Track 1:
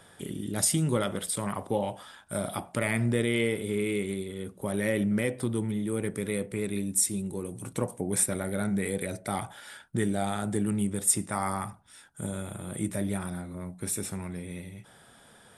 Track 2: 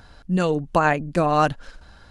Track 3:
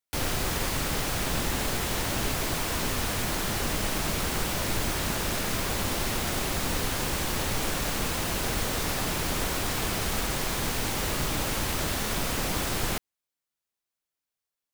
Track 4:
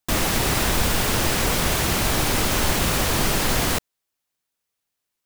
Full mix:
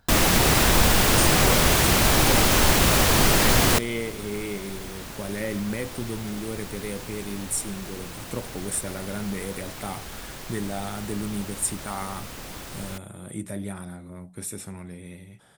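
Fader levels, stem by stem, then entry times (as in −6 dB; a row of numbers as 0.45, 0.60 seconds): −2.5, −14.0, −9.5, +2.5 decibels; 0.55, 0.00, 0.00, 0.00 seconds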